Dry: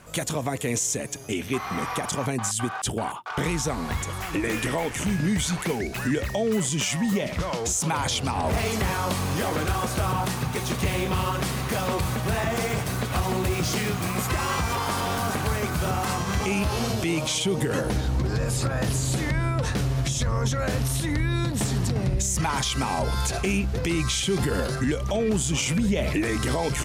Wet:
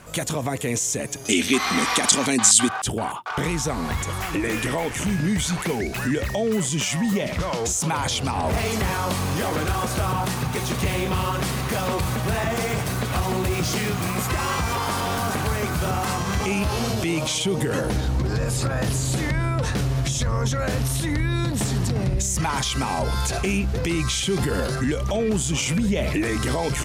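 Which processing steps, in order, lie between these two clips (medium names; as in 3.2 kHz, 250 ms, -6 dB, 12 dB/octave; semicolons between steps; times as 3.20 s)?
in parallel at +1 dB: peak limiter -22.5 dBFS, peak gain reduction 7.5 dB; 1.25–2.69 s: on the sum: graphic EQ 125/250/2000/4000/8000 Hz -10/+9/+5/+11/+11 dB; trim -2.5 dB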